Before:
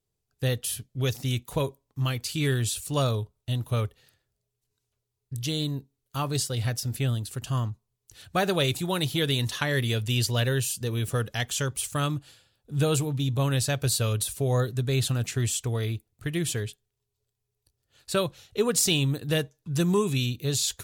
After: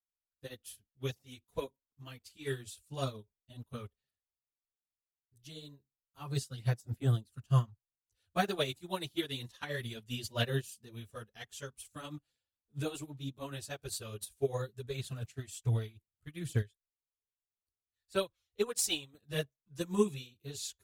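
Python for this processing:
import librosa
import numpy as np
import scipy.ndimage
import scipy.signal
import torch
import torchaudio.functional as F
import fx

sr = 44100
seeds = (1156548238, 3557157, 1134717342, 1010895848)

y = fx.peak_eq(x, sr, hz=150.0, db=-14.5, octaves=1.0, at=(16.61, 19.14))
y = fx.chorus_voices(y, sr, voices=6, hz=1.2, base_ms=12, depth_ms=3.0, mix_pct=70)
y = fx.upward_expand(y, sr, threshold_db=-40.0, expansion=2.5)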